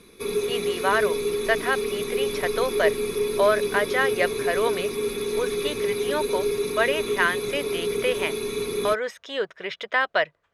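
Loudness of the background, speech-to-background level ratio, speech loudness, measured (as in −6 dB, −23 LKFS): −27.0 LKFS, 0.5 dB, −26.5 LKFS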